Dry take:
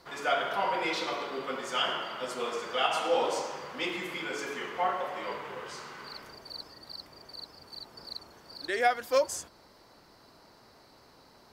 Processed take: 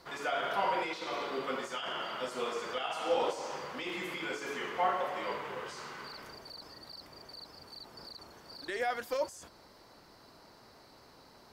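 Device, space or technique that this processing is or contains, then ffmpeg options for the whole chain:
de-esser from a sidechain: -filter_complex "[0:a]asplit=2[s0][s1];[s1]highpass=4900,apad=whole_len=508262[s2];[s0][s2]sidechaincompress=threshold=0.00398:ratio=10:attack=1.3:release=21"

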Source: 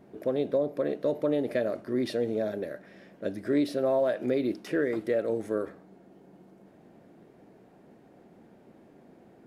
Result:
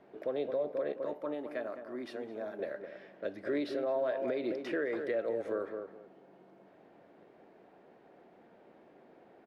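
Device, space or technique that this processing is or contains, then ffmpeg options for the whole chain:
DJ mixer with the lows and highs turned down: -filter_complex "[0:a]asettb=1/sr,asplit=3[s0][s1][s2];[s0]atrim=end=0.924[s3];[s1]atrim=start=0.92:end=2.59,asetpts=PTS-STARTPTS,afade=t=in:d=0.004:c=qsin,afade=t=out:st=1.666:d=0.004:c=qsin,equalizer=f=125:t=o:w=1:g=-11,equalizer=f=500:t=o:w=1:g=-12,equalizer=f=1000:t=o:w=1:g=3,equalizer=f=2000:t=o:w=1:g=-6,equalizer=f=4000:t=o:w=1:g=-9[s4];[s2]atrim=start=2.586[s5];[s3][s4]acrossfade=d=0.004:c1=hsin:c2=qsin[s6];[s6][s5]acrossfade=d=0.004:c1=qsin:c2=hsin,acrossover=split=380 4400:gain=0.224 1 0.141[s7][s8][s9];[s7][s8][s9]amix=inputs=3:normalize=0,asplit=2[s10][s11];[s11]adelay=211,lowpass=f=1100:p=1,volume=0.422,asplit=2[s12][s13];[s13]adelay=211,lowpass=f=1100:p=1,volume=0.24,asplit=2[s14][s15];[s15]adelay=211,lowpass=f=1100:p=1,volume=0.24[s16];[s10][s12][s14][s16]amix=inputs=4:normalize=0,alimiter=level_in=1.06:limit=0.0631:level=0:latency=1:release=177,volume=0.944"

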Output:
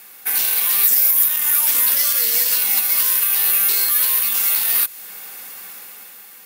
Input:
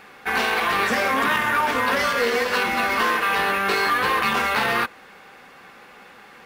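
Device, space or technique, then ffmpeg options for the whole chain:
FM broadcast chain: -filter_complex "[0:a]asplit=3[s0][s1][s2];[s0]afade=t=out:st=0.83:d=0.02[s3];[s1]highshelf=f=11000:g=11.5,afade=t=in:st=0.83:d=0.02,afade=t=out:st=1.27:d=0.02[s4];[s2]afade=t=in:st=1.27:d=0.02[s5];[s3][s4][s5]amix=inputs=3:normalize=0,highpass=48,dynaudnorm=f=250:g=7:m=3.76,acrossover=split=180|2500[s6][s7][s8];[s6]acompressor=threshold=0.00447:ratio=4[s9];[s7]acompressor=threshold=0.0447:ratio=4[s10];[s8]acompressor=threshold=0.0501:ratio=4[s11];[s9][s10][s11]amix=inputs=3:normalize=0,aemphasis=mode=production:type=75fm,alimiter=limit=0.355:level=0:latency=1:release=417,asoftclip=type=hard:threshold=0.299,lowpass=f=15000:w=0.5412,lowpass=f=15000:w=1.3066,aemphasis=mode=production:type=75fm,volume=0.398"

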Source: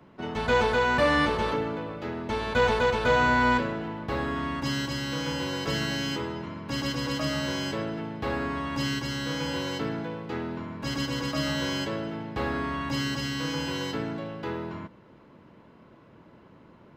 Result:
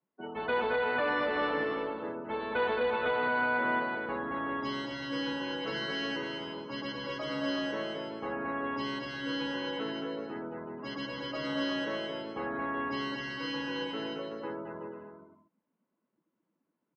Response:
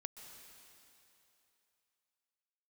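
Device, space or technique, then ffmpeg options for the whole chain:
DJ mixer with the lows and highs turned down: -filter_complex "[0:a]afftdn=nr=28:nf=-35,acrossover=split=230 4200:gain=0.126 1 0.2[s0][s1][s2];[s0][s1][s2]amix=inputs=3:normalize=0,aecho=1:1:220|374|481.8|557.3|610.1:0.631|0.398|0.251|0.158|0.1,alimiter=limit=0.15:level=0:latency=1:release=193,volume=0.596"

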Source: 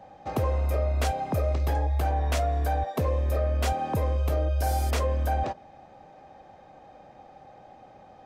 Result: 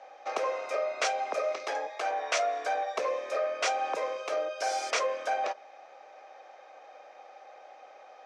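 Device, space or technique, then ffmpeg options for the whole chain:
phone speaker on a table: -filter_complex "[0:a]highpass=f=490:w=0.5412,highpass=f=490:w=1.3066,equalizer=f=860:t=q:w=4:g=-5,equalizer=f=1300:t=q:w=4:g=4,equalizer=f=2300:t=q:w=4:g=6,equalizer=f=5800:t=q:w=4:g=6,lowpass=f=7200:w=0.5412,lowpass=f=7200:w=1.3066,asettb=1/sr,asplit=3[s0][s1][s2];[s0]atrim=end=1.864[s3];[s1]atrim=start=1.86:end=2.37,asetpts=PTS-STARTPTS,afade=t=in:d=0.004:c=qsin,afade=t=out:st=0.506:d=0.004:c=qsin,highpass=260[s4];[s2]atrim=start=2.366[s5];[s3][s4]acrossfade=d=0.004:c1=hsin:c2=qsin[s6];[s6][s5]acrossfade=d=0.004:c1=qsin:c2=hsin,volume=1.26"

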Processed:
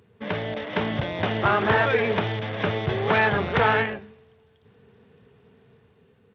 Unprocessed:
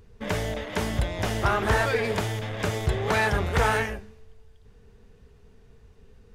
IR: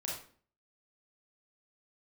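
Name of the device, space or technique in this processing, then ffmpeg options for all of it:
Bluetooth headset: -af "highpass=f=110:w=0.5412,highpass=f=110:w=1.3066,dynaudnorm=f=110:g=11:m=1.5,aresample=8000,aresample=44100" -ar 32000 -c:a sbc -b:a 64k

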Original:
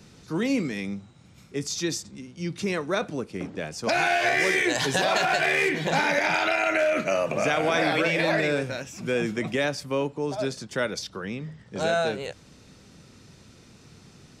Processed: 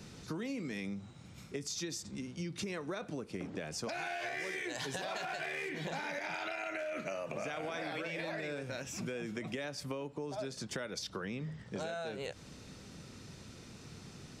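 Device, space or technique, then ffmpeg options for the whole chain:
serial compression, peaks first: -af "acompressor=threshold=0.0251:ratio=6,acompressor=threshold=0.0126:ratio=2.5"

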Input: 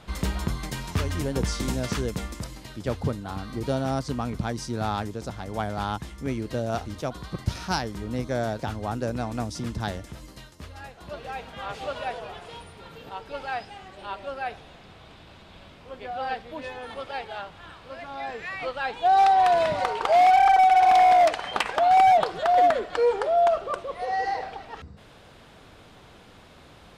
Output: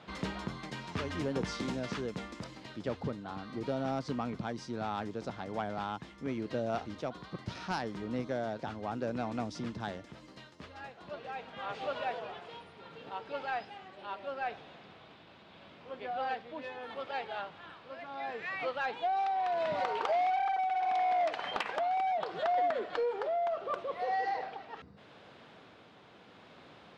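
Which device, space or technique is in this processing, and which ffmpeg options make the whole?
AM radio: -af "highpass=160,lowpass=4200,acompressor=threshold=0.0708:ratio=6,asoftclip=type=tanh:threshold=0.119,tremolo=f=0.75:d=0.28,volume=0.708"

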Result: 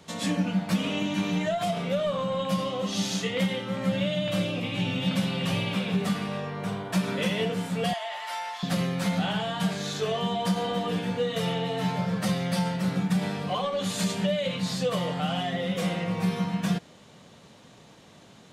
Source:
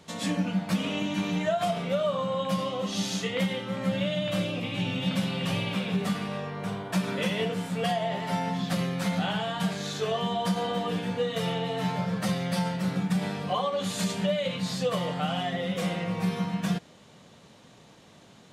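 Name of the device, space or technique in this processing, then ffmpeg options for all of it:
one-band saturation: -filter_complex "[0:a]asettb=1/sr,asplit=3[s0][s1][s2];[s0]atrim=end=7.934[s3];[s1]atrim=start=7.93:end=8.63,asetpts=PTS-STARTPTS,afade=t=in:d=0.004:c=qsin,afade=t=out:st=0.696:d=0.004:c=qsin,highpass=f=800:w=0.5412,highpass=f=800:w=1.3066[s4];[s2]atrim=start=8.626[s5];[s3][s4]acrossfade=d=0.004:c1=hsin:c2=qsin[s6];[s6][s5]acrossfade=d=0.004:c1=qsin:c2=hsin,acrossover=split=510|2300[s7][s8][s9];[s8]asoftclip=type=tanh:threshold=0.0335[s10];[s7][s10][s9]amix=inputs=3:normalize=0,volume=1.19"

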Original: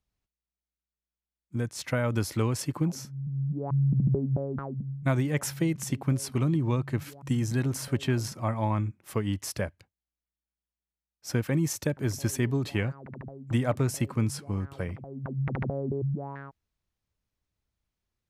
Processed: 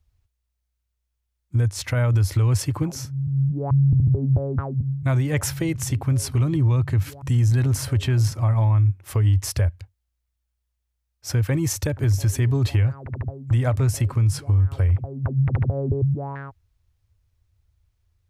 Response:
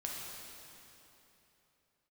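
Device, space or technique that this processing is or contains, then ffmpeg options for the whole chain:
car stereo with a boomy subwoofer: -af "lowshelf=f=130:t=q:w=3:g=10.5,alimiter=limit=0.106:level=0:latency=1:release=91,volume=2.11"

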